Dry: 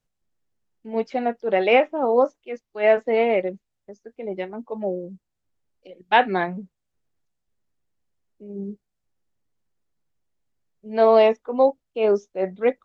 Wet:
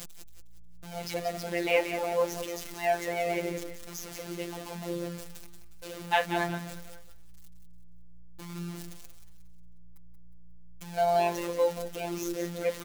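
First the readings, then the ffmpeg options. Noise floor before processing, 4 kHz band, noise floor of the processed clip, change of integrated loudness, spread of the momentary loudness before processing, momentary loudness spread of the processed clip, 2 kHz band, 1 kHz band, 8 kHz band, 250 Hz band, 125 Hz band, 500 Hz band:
−80 dBFS, −3.5 dB, −43 dBFS, −10.0 dB, 17 LU, 20 LU, −6.5 dB, −8.0 dB, can't be measured, −7.5 dB, +0.5 dB, −10.5 dB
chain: -filter_complex "[0:a]aeval=exprs='val(0)+0.5*0.0398*sgn(val(0))':channel_layout=same,highshelf=frequency=2500:gain=8,asplit=5[link_01][link_02][link_03][link_04][link_05];[link_02]adelay=180,afreqshift=-59,volume=-8.5dB[link_06];[link_03]adelay=360,afreqshift=-118,volume=-16.5dB[link_07];[link_04]adelay=540,afreqshift=-177,volume=-24.4dB[link_08];[link_05]adelay=720,afreqshift=-236,volume=-32.4dB[link_09];[link_01][link_06][link_07][link_08][link_09]amix=inputs=5:normalize=0,afftfilt=real='hypot(re,im)*cos(PI*b)':imag='0':win_size=1024:overlap=0.75,volume=-8dB"

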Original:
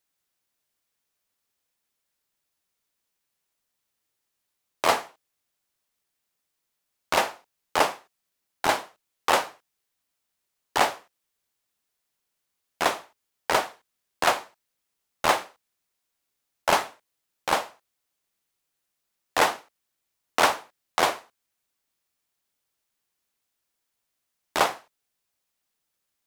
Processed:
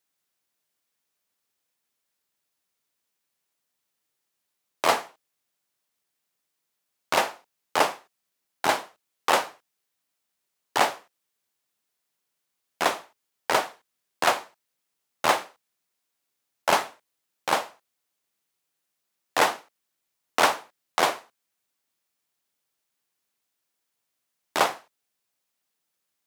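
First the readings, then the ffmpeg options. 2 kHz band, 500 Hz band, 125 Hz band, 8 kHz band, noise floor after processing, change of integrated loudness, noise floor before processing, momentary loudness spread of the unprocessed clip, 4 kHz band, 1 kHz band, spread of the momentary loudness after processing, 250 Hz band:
0.0 dB, 0.0 dB, −1.5 dB, 0.0 dB, −81 dBFS, 0.0 dB, −81 dBFS, 14 LU, 0.0 dB, 0.0 dB, 14 LU, 0.0 dB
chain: -af "highpass=110"

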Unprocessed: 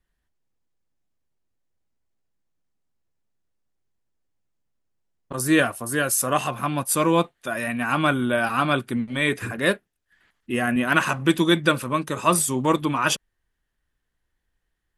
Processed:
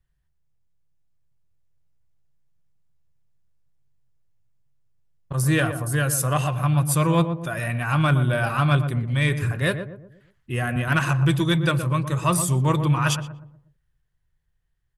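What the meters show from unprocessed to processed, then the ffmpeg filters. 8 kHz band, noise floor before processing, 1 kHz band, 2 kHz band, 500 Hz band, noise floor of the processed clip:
−2.0 dB, −77 dBFS, −2.5 dB, −2.5 dB, −3.0 dB, −71 dBFS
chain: -filter_complex "[0:a]lowshelf=frequency=180:width_type=q:width=3:gain=8,dynaudnorm=framelen=120:gausssize=21:maxgain=3dB,asoftclip=type=tanh:threshold=-5dB,asplit=2[link_01][link_02];[link_02]adelay=120,lowpass=frequency=840:poles=1,volume=-7dB,asplit=2[link_03][link_04];[link_04]adelay=120,lowpass=frequency=840:poles=1,volume=0.46,asplit=2[link_05][link_06];[link_06]adelay=120,lowpass=frequency=840:poles=1,volume=0.46,asplit=2[link_07][link_08];[link_08]adelay=120,lowpass=frequency=840:poles=1,volume=0.46,asplit=2[link_09][link_10];[link_10]adelay=120,lowpass=frequency=840:poles=1,volume=0.46[link_11];[link_01][link_03][link_05][link_07][link_09][link_11]amix=inputs=6:normalize=0,volume=-4dB"

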